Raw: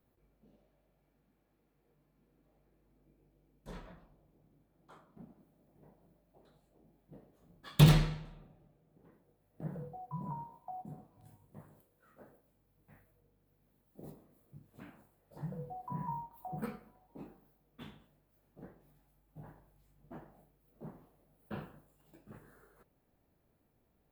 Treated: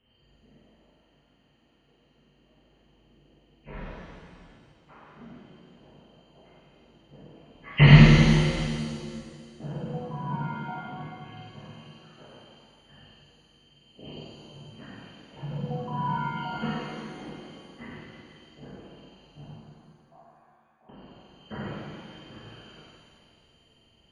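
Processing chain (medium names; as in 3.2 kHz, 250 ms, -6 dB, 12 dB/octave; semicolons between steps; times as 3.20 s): knee-point frequency compression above 1.7 kHz 4:1; 19.44–20.89 s: cascade formant filter a; pitch-shifted reverb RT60 2 s, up +7 st, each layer -8 dB, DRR -7.5 dB; trim +1.5 dB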